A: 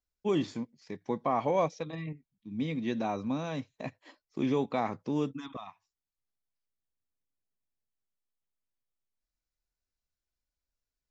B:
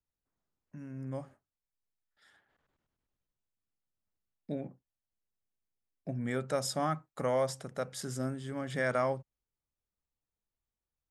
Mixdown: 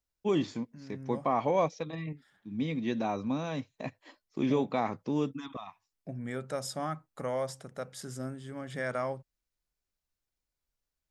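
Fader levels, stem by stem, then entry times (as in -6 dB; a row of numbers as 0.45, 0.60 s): +0.5, -3.0 dB; 0.00, 0.00 s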